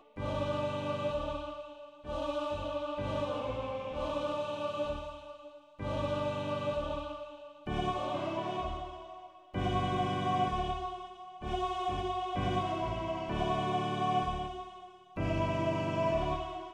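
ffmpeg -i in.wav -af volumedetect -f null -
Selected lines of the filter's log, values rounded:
mean_volume: -34.6 dB
max_volume: -18.9 dB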